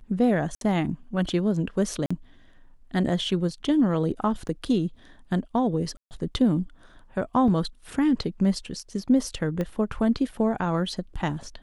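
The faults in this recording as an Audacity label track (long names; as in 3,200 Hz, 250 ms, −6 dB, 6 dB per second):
0.550000	0.610000	drop-out 62 ms
2.060000	2.100000	drop-out 45 ms
4.480000	4.490000	drop-out 7.5 ms
5.970000	6.110000	drop-out 139 ms
7.480000	7.480000	drop-out 2.5 ms
9.610000	9.610000	click −17 dBFS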